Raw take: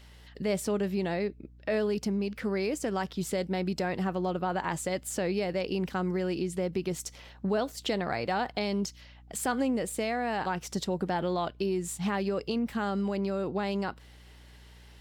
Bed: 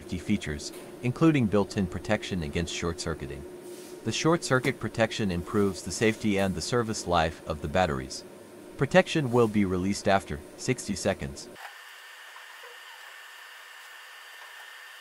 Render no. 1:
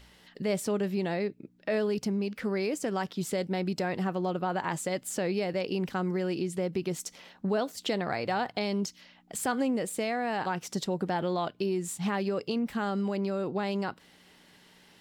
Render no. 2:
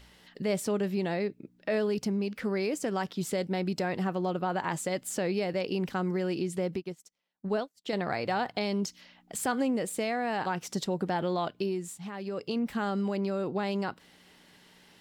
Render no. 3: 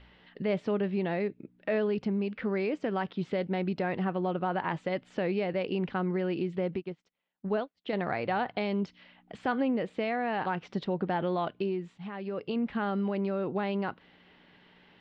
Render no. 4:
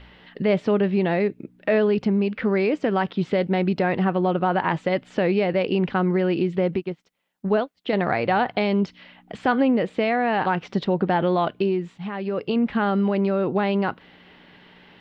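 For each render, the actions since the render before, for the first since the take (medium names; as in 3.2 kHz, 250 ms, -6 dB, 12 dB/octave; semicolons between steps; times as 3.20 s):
de-hum 60 Hz, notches 2
6.76–7.93 s: upward expansion 2.5:1, over -48 dBFS; 11.58–12.61 s: dip -10 dB, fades 0.47 s
low-pass 3.3 kHz 24 dB/octave
trim +9 dB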